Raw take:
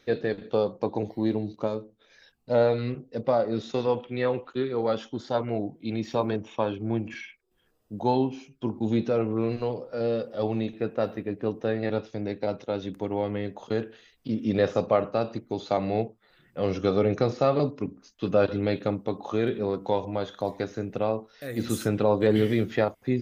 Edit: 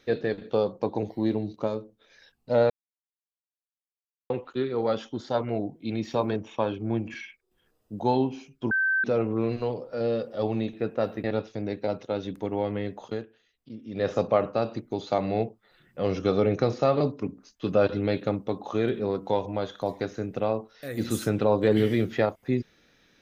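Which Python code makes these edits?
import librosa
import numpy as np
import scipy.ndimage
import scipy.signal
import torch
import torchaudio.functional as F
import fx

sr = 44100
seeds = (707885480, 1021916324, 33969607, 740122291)

y = fx.edit(x, sr, fx.silence(start_s=2.7, length_s=1.6),
    fx.bleep(start_s=8.71, length_s=0.33, hz=1550.0, db=-21.0),
    fx.cut(start_s=11.24, length_s=0.59),
    fx.fade_down_up(start_s=13.62, length_s=1.11, db=-13.0, fade_s=0.23), tone=tone)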